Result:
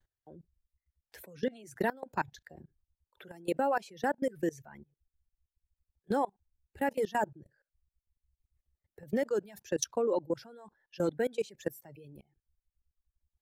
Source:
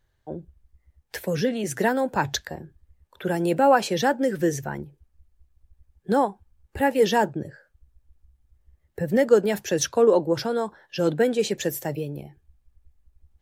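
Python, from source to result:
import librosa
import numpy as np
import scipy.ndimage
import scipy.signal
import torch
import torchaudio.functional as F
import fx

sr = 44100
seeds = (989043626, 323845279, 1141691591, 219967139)

y = fx.dereverb_blind(x, sr, rt60_s=1.2)
y = fx.level_steps(y, sr, step_db=23)
y = y * librosa.db_to_amplitude(-5.0)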